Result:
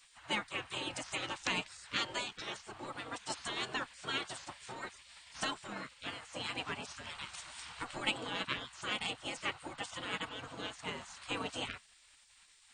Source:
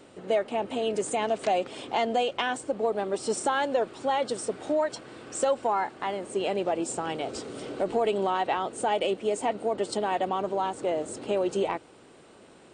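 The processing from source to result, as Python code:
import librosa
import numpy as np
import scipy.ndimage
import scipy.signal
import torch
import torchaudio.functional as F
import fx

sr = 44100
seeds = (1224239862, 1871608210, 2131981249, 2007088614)

y = fx.spec_gate(x, sr, threshold_db=-20, keep='weak')
y = fx.upward_expand(y, sr, threshold_db=-45.0, expansion=1.5)
y = y * librosa.db_to_amplitude(6.0)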